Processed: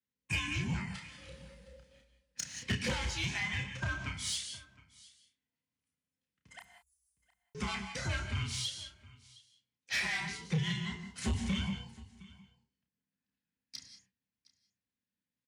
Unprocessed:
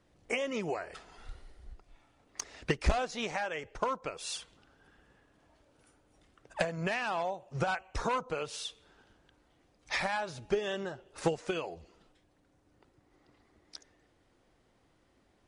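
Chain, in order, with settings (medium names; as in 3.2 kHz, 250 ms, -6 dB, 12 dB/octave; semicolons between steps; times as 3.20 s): every band turned upside down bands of 500 Hz; gate -58 dBFS, range -26 dB; high-order bell 580 Hz -15 dB 2.5 oct; frequency shift +45 Hz; 6.59–7.55 s: inverse Chebyshev band-stop 120–3000 Hz, stop band 80 dB; doubling 31 ms -5.5 dB; delay 713 ms -23 dB; gated-style reverb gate 210 ms rising, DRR 8.5 dB; saturation -29 dBFS, distortion -12 dB; trim +3 dB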